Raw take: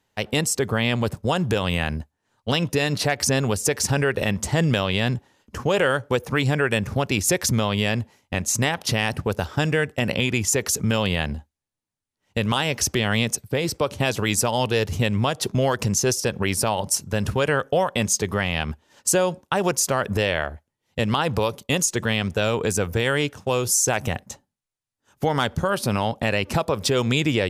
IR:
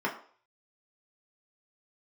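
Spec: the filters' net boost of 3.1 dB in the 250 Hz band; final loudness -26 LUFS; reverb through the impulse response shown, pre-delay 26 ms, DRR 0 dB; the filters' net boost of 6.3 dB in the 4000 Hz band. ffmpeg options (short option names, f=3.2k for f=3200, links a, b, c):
-filter_complex "[0:a]equalizer=f=250:t=o:g=4,equalizer=f=4k:t=o:g=8.5,asplit=2[a][b];[1:a]atrim=start_sample=2205,adelay=26[c];[b][c]afir=irnorm=-1:irlink=0,volume=-9.5dB[d];[a][d]amix=inputs=2:normalize=0,volume=-8dB"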